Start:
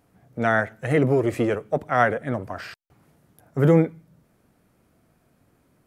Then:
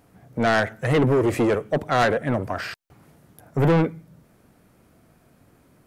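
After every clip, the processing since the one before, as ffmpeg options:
-af "asoftclip=type=tanh:threshold=-20.5dB,volume=6dB"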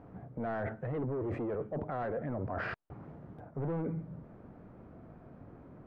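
-af "lowpass=1.1k,alimiter=level_in=1dB:limit=-24dB:level=0:latency=1:release=11,volume=-1dB,areverse,acompressor=threshold=-39dB:ratio=6,areverse,volume=5dB"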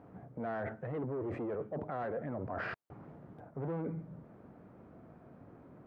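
-af "highpass=f=120:p=1,volume=-1.5dB"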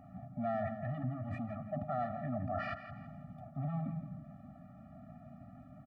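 -filter_complex "[0:a]asplit=2[a][b];[b]adelay=167,lowpass=f=4.5k:p=1,volume=-10dB,asplit=2[c][d];[d]adelay=167,lowpass=f=4.5k:p=1,volume=0.37,asplit=2[e][f];[f]adelay=167,lowpass=f=4.5k:p=1,volume=0.37,asplit=2[g][h];[h]adelay=167,lowpass=f=4.5k:p=1,volume=0.37[i];[c][e][g][i]amix=inputs=4:normalize=0[j];[a][j]amix=inputs=2:normalize=0,afftfilt=real='re*eq(mod(floor(b*sr/1024/280),2),0)':imag='im*eq(mod(floor(b*sr/1024/280),2),0)':win_size=1024:overlap=0.75,volume=3.5dB"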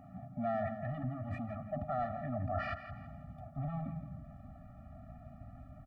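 -af "asubboost=boost=8.5:cutoff=63,volume=1dB"

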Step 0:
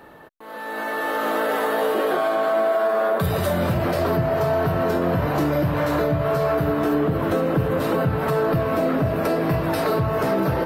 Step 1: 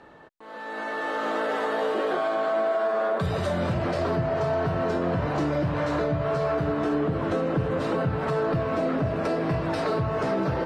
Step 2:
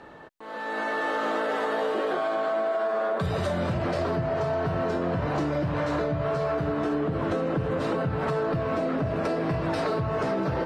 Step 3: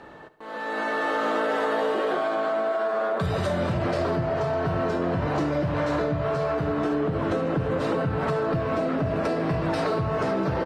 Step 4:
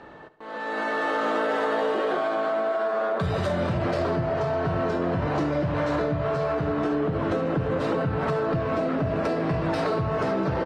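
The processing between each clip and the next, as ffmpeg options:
-af "lowpass=f=7.7k:w=0.5412,lowpass=f=7.7k:w=1.3066,volume=-4.5dB"
-af "acompressor=threshold=-27dB:ratio=6,volume=3.5dB"
-af "aecho=1:1:72|144|216|288|360|432:0.158|0.0935|0.0552|0.0326|0.0192|0.0113,volume=1.5dB"
-af "adynamicsmooth=sensitivity=7.5:basefreq=7.4k"

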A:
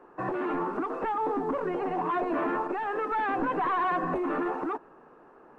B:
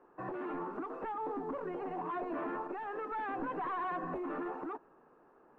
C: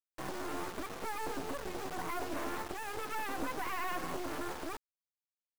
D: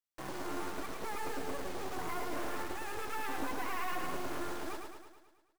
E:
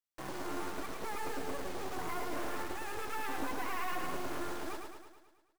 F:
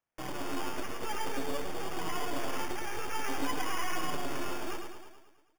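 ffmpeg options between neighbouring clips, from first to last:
-af "highshelf=f=3.5k:g=-7,volume=-9dB"
-af "aeval=exprs='sgn(val(0))*max(abs(val(0))-0.00178,0)':c=same,acrusher=bits=5:dc=4:mix=0:aa=0.000001,volume=4.5dB"
-af "aecho=1:1:108|216|324|432|540|648|756|864:0.596|0.345|0.2|0.116|0.0674|0.0391|0.0227|0.0132,volume=-2dB"
-af anull
-af "flanger=delay=5.9:depth=2.7:regen=47:speed=0.52:shape=triangular,acrusher=samples=11:mix=1:aa=0.000001,volume=7dB"

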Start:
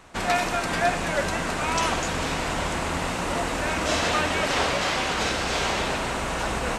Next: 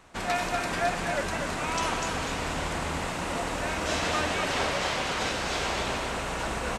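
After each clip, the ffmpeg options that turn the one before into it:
-af "aecho=1:1:244:0.501,volume=-5dB"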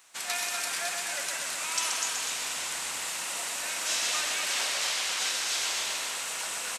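-af "aderivative,aecho=1:1:129:0.501,volume=8dB"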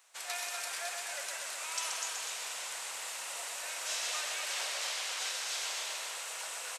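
-af "lowshelf=f=360:t=q:w=1.5:g=-10.5,volume=-7dB"

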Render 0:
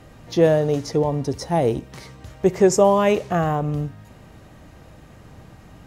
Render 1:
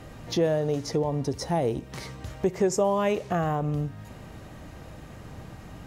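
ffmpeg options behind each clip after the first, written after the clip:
-af "acompressor=threshold=-31dB:ratio=2,volume=2dB"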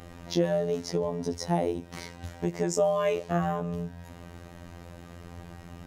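-af "afftfilt=real='hypot(re,im)*cos(PI*b)':imag='0':win_size=2048:overlap=0.75,volume=1.5dB"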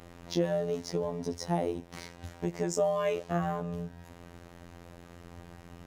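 -af "aeval=exprs='sgn(val(0))*max(abs(val(0))-0.00178,0)':c=same,volume=-3dB"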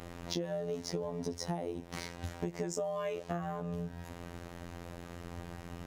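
-af "acompressor=threshold=-36dB:ratio=10,volume=4dB"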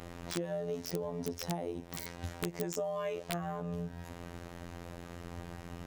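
-af "aeval=exprs='(mod(11.2*val(0)+1,2)-1)/11.2':c=same"

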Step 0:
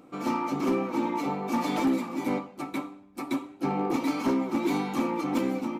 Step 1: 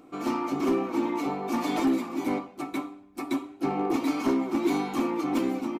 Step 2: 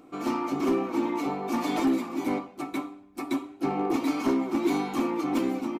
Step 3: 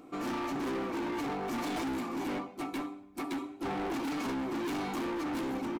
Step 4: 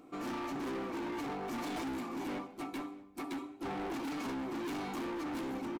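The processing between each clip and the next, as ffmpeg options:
-af "aecho=1:1:2.8:0.39"
-af anull
-af "volume=32.5dB,asoftclip=hard,volume=-32.5dB"
-af "aecho=1:1:633:0.075,volume=-4dB"

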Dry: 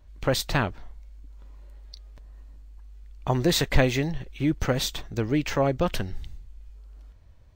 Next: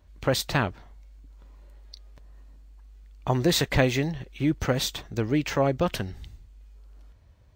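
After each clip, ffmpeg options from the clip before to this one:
-af "highpass=52"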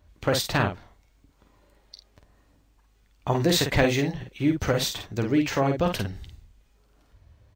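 -af "aecho=1:1:10|50:0.299|0.531"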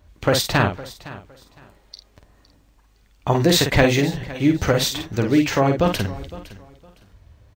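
-af "aecho=1:1:511|1022:0.126|0.029,volume=5.5dB"

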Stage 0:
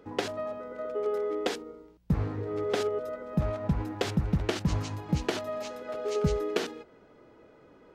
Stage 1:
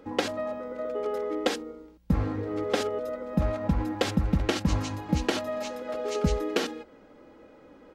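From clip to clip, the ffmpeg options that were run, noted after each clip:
-af "aecho=1:1:3.7:0.47,volume=3dB"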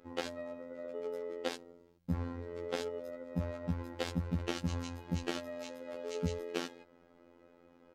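-af "afftfilt=real='hypot(re,im)*cos(PI*b)':imag='0':win_size=2048:overlap=0.75,volume=-6.5dB"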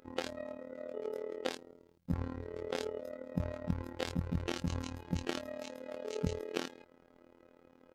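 -af "tremolo=f=37:d=0.857,volume=3.5dB"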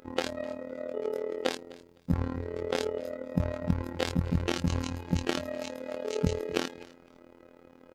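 -af "aecho=1:1:255|510:0.0891|0.0187,volume=7dB"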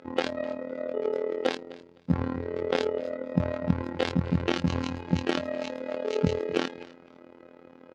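-af "aeval=exprs='0.376*(abs(mod(val(0)/0.376+3,4)-2)-1)':c=same,highpass=110,lowpass=4.1k,volume=4dB"

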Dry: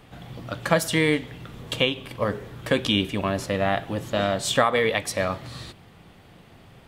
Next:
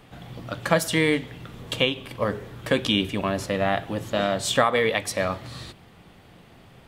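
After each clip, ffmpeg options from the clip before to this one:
-af "bandreject=f=50:t=h:w=6,bandreject=f=100:t=h:w=6,bandreject=f=150:t=h:w=6"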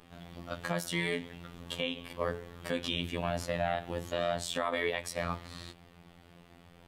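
-af "afftfilt=real='hypot(re,im)*cos(PI*b)':imag='0':win_size=2048:overlap=0.75,alimiter=limit=-13dB:level=0:latency=1:release=134,volume=-3dB"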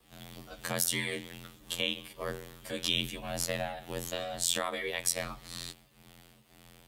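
-filter_complex "[0:a]aeval=exprs='val(0)*sin(2*PI*44*n/s)':c=same,acrossover=split=100|1200[a][b][c];[c]crystalizer=i=3.5:c=0[d];[a][b][d]amix=inputs=3:normalize=0"

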